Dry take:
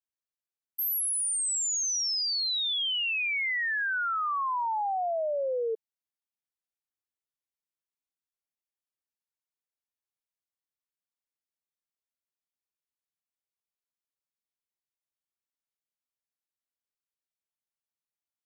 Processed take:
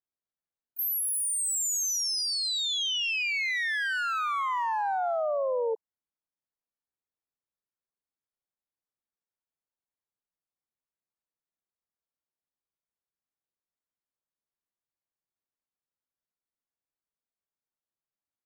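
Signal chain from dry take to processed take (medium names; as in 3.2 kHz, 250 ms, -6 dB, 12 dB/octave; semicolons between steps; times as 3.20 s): local Wiener filter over 15 samples; harmony voices +3 st -13 dB, +12 st -13 dB; trim +1.5 dB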